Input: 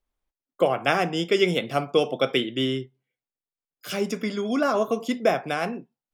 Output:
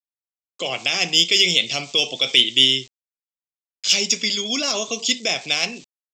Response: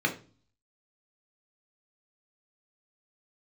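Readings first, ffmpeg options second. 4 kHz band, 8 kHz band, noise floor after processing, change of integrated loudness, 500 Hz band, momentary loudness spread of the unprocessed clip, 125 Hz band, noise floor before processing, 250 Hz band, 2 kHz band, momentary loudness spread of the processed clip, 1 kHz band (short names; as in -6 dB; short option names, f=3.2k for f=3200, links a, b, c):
+16.0 dB, +19.5 dB, under -85 dBFS, +7.0 dB, -6.5 dB, 10 LU, -4.5 dB, under -85 dBFS, -4.5 dB, +6.0 dB, 9 LU, -6.5 dB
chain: -af "alimiter=limit=-15dB:level=0:latency=1:release=16,aresample=16000,aeval=exprs='val(0)*gte(abs(val(0)),0.00282)':c=same,aresample=44100,aexciter=amount=9.7:drive=8.1:freq=2.3k,volume=-4dB"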